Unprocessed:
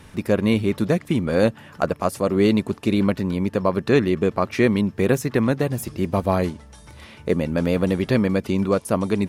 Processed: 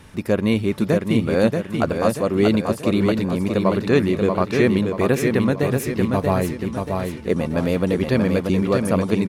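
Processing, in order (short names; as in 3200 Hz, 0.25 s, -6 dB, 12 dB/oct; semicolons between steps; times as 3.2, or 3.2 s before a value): feedback echo 0.633 s, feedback 45%, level -4.5 dB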